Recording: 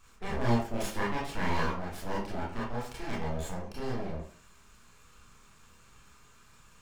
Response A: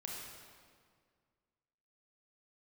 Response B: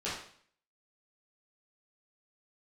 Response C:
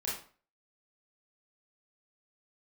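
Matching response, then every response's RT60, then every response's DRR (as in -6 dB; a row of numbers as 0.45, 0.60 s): C; 1.9, 0.55, 0.40 s; -3.0, -10.5, -7.0 dB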